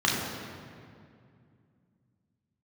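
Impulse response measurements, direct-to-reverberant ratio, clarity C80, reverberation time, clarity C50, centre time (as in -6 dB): -4.0 dB, 2.5 dB, 2.3 s, 1.0 dB, 98 ms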